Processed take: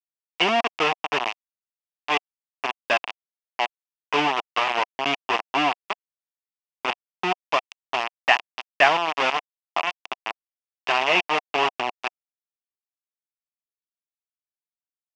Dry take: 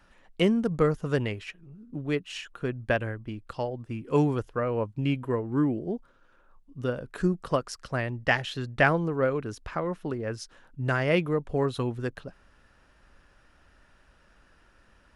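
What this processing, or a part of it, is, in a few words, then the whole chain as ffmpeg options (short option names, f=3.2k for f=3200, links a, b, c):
hand-held game console: -af "acrusher=bits=3:mix=0:aa=0.000001,highpass=490,equalizer=f=510:t=q:w=4:g=-10,equalizer=f=730:t=q:w=4:g=6,equalizer=f=1k:t=q:w=4:g=5,equalizer=f=1.5k:t=q:w=4:g=-5,equalizer=f=2.7k:t=q:w=4:g=9,equalizer=f=4.1k:t=q:w=4:g=-9,lowpass=f=4.7k:w=0.5412,lowpass=f=4.7k:w=1.3066,volume=4.5dB"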